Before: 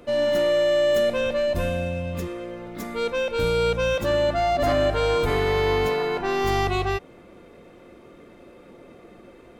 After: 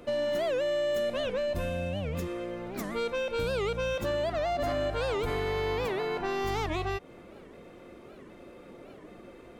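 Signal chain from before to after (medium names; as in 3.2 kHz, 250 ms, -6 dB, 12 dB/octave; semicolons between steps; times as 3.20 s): compression 3:1, threshold -28 dBFS, peak gain reduction 8 dB; warped record 78 rpm, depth 250 cents; trim -1.5 dB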